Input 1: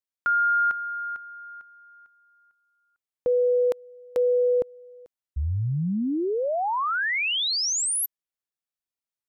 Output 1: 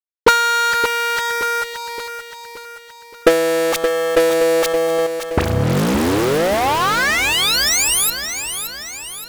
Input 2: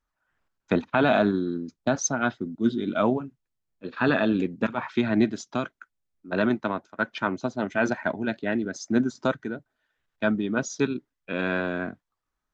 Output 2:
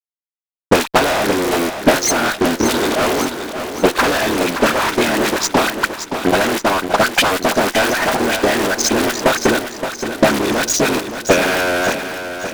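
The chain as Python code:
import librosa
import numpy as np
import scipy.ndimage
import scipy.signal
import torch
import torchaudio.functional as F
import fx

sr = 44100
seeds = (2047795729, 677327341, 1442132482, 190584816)

p1 = fx.cycle_switch(x, sr, every=3, mode='muted')
p2 = scipy.signal.sosfilt(scipy.signal.butter(2, 330.0, 'highpass', fs=sr, output='sos'), p1)
p3 = fx.dispersion(p2, sr, late='highs', ms=41.0, hz=1300.0)
p4 = fx.over_compress(p3, sr, threshold_db=-37.0, ratio=-1.0)
p5 = p3 + F.gain(torch.from_numpy(p4), 1.5).numpy()
p6 = fx.fuzz(p5, sr, gain_db=35.0, gate_db=-41.0)
p7 = fx.transient(p6, sr, attack_db=11, sustain_db=-5)
p8 = p7 + fx.echo_feedback(p7, sr, ms=572, feedback_pct=52, wet_db=-9.0, dry=0)
y = F.gain(torch.from_numpy(p8), -2.5).numpy()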